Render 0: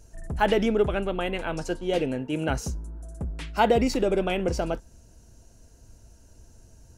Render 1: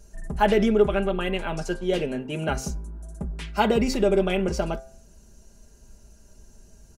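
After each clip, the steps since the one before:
comb filter 5 ms
hum removal 132.3 Hz, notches 18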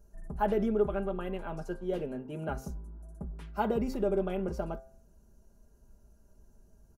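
flat-topped bell 4,100 Hz −11 dB 2.6 octaves
level −8.5 dB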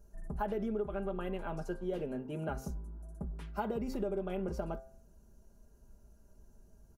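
downward compressor 6 to 1, threshold −32 dBFS, peak gain reduction 10 dB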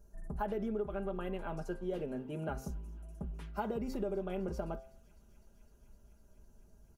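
delay with a high-pass on its return 254 ms, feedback 85%, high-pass 2,200 Hz, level −22.5 dB
level −1 dB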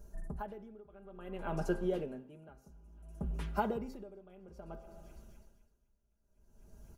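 convolution reverb RT60 1.2 s, pre-delay 76 ms, DRR 16.5 dB
tremolo with a sine in dB 0.58 Hz, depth 25 dB
level +6.5 dB

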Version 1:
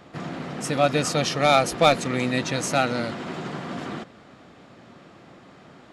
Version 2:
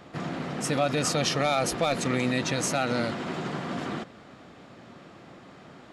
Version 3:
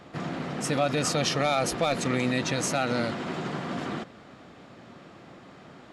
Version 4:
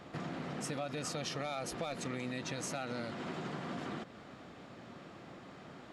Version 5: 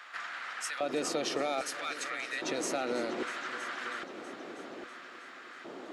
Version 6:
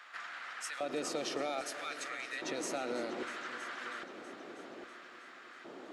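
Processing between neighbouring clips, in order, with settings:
brickwall limiter −15 dBFS, peak gain reduction 11.5 dB
high-shelf EQ 11,000 Hz −3 dB
downward compressor 3 to 1, threshold −36 dBFS, peak gain reduction 12 dB; level −3 dB
auto-filter high-pass square 0.62 Hz 350–1,500 Hz; echo machine with several playback heads 322 ms, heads all three, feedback 51%, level −19 dB; level +4.5 dB
convolution reverb RT60 2.0 s, pre-delay 70 ms, DRR 14 dB; level −4.5 dB

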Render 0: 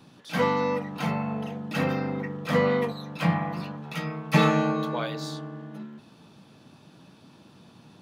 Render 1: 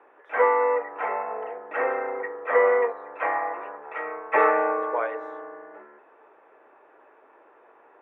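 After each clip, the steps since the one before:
elliptic band-pass filter 410–2,000 Hz, stop band 40 dB
level +5.5 dB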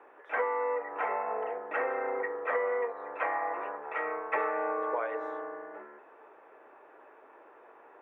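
downward compressor 6 to 1, threshold −28 dBFS, peak gain reduction 12.5 dB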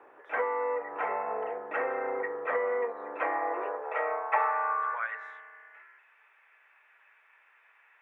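high-pass filter sweep 110 Hz → 2,200 Hz, 0:02.32–0:05.41

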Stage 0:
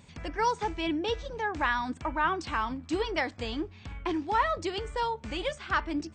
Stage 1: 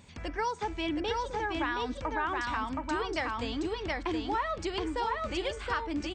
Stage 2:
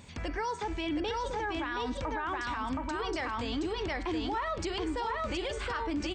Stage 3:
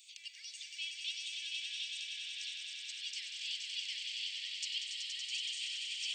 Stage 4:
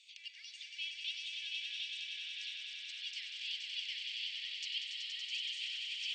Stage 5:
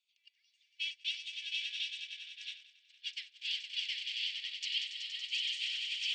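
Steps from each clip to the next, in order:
parametric band 150 Hz −8.5 dB 0.23 octaves; on a send: single-tap delay 721 ms −3 dB; on the sum: downward compressor 3 to 1, threshold −29 dBFS, peak gain reduction 7 dB
hum removal 192.3 Hz, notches 24; brickwall limiter −29.5 dBFS, peak gain reduction 10.5 dB; level +4 dB
Butterworth high-pass 2,600 Hz 48 dB per octave; on a send: echo that builds up and dies away 94 ms, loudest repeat 5, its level −6.5 dB; on the sum: level +1 dB
low-pass filter 3,800 Hz 12 dB per octave; level +1.5 dB
noise gate −42 dBFS, range −27 dB; level +4.5 dB

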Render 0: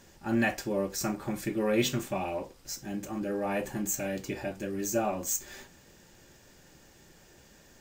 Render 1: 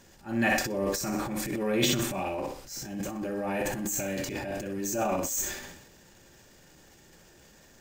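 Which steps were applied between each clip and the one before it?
feedback echo with a high-pass in the loop 61 ms, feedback 40%, high-pass 170 Hz, level −8 dB
transient designer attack −8 dB, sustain +10 dB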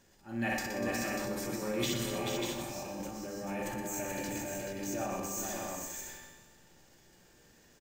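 tuned comb filter 59 Hz, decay 1.4 s, harmonics all, mix 70%
on a send: multi-tap delay 121/244/435/592/688 ms −8/−11.5/−5/−5/−12.5 dB

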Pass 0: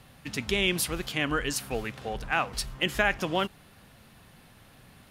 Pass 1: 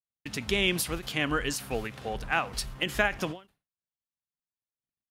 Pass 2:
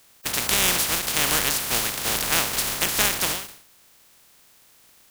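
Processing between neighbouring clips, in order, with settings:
noise gate −47 dBFS, range −55 dB; every ending faded ahead of time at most 190 dB per second
compressing power law on the bin magnitudes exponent 0.16; envelope flattener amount 50%; level +4 dB

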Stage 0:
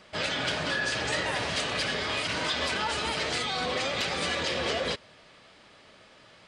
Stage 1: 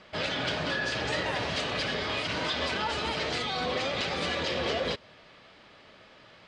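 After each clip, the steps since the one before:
low-pass filter 4,800 Hz 12 dB per octave
dynamic equaliser 1,800 Hz, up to −3 dB, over −40 dBFS, Q 0.72
level +1 dB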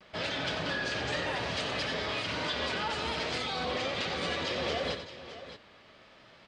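pitch vibrato 0.68 Hz 44 cents
on a send: multi-tap delay 92/615 ms −9.5/−13 dB
on the sum: level −3 dB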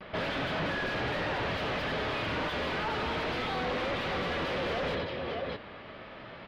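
in parallel at −8 dB: sine wavefolder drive 15 dB, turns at −21.5 dBFS
on the sum: high-frequency loss of the air 350 metres

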